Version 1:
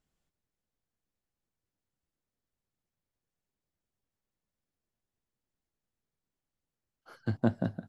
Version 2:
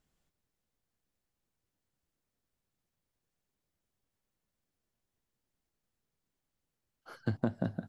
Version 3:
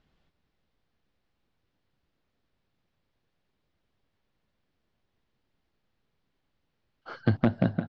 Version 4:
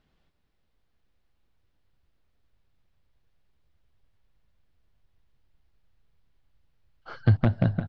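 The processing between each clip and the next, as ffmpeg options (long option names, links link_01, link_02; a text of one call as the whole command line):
ffmpeg -i in.wav -af "acompressor=threshold=-30dB:ratio=10,volume=3dB" out.wav
ffmpeg -i in.wav -af "aeval=exprs='0.0891*(abs(mod(val(0)/0.0891+3,4)-2)-1)':channel_layout=same,lowpass=frequency=4400:width=0.5412,lowpass=frequency=4400:width=1.3066,aecho=1:1:349:0.188,volume=9dB" out.wav
ffmpeg -i in.wav -af "asubboost=boost=5.5:cutoff=100" out.wav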